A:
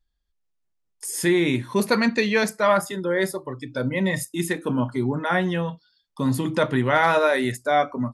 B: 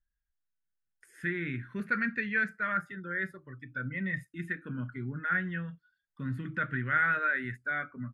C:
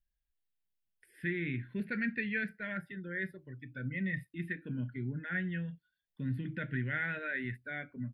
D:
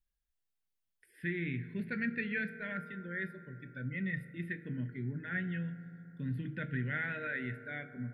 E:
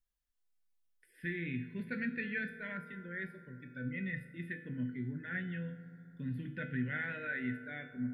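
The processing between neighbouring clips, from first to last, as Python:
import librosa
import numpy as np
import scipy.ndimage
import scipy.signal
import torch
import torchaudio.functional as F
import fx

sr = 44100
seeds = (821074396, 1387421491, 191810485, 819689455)

y1 = fx.curve_eq(x, sr, hz=(160.0, 950.0, 1500.0, 5100.0), db=(0, -21, 10, -24))
y1 = y1 * librosa.db_to_amplitude(-9.0)
y2 = fx.fixed_phaser(y1, sr, hz=2900.0, stages=4)
y3 = fx.rev_fdn(y2, sr, rt60_s=3.5, lf_ratio=1.0, hf_ratio=0.25, size_ms=13.0, drr_db=11.5)
y3 = y3 * librosa.db_to_amplitude(-1.5)
y4 = fx.comb_fb(y3, sr, f0_hz=250.0, decay_s=0.57, harmonics='all', damping=0.0, mix_pct=80)
y4 = y4 * librosa.db_to_amplitude(10.0)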